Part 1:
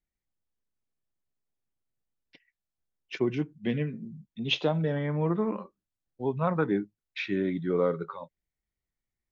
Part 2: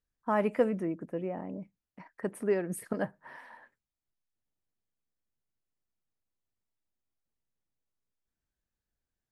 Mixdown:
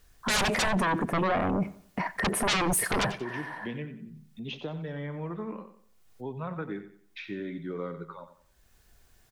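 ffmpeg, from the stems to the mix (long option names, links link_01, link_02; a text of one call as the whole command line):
ffmpeg -i stem1.wav -i stem2.wav -filter_complex "[0:a]acrossover=split=410|1100[link_01][link_02][link_03];[link_01]acompressor=threshold=-32dB:ratio=4[link_04];[link_02]acompressor=threshold=-39dB:ratio=4[link_05];[link_03]acompressor=threshold=-36dB:ratio=4[link_06];[link_04][link_05][link_06]amix=inputs=3:normalize=0,volume=-4dB,asplit=3[link_07][link_08][link_09];[link_08]volume=-11.5dB[link_10];[1:a]aecho=1:1:2.8:0.31,aeval=exprs='0.168*sin(PI/2*10*val(0)/0.168)':channel_layout=same,equalizer=frequency=300:width=3:gain=-7,volume=3dB,asplit=2[link_11][link_12];[link_12]volume=-24dB[link_13];[link_09]apad=whole_len=410879[link_14];[link_11][link_14]sidechaincompress=threshold=-52dB:ratio=6:attack=23:release=554[link_15];[link_10][link_13]amix=inputs=2:normalize=0,aecho=0:1:91|182|273|364|455:1|0.34|0.116|0.0393|0.0134[link_16];[link_07][link_15][link_16]amix=inputs=3:normalize=0,alimiter=limit=-21dB:level=0:latency=1:release=65" out.wav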